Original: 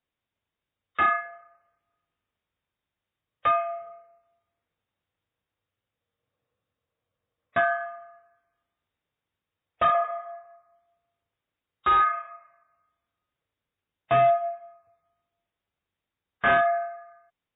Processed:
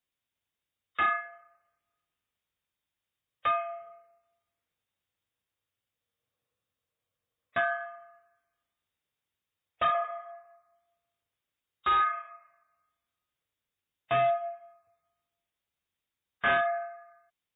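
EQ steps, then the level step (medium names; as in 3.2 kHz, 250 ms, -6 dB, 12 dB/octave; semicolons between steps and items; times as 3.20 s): treble shelf 2.5 kHz +11 dB; -7.0 dB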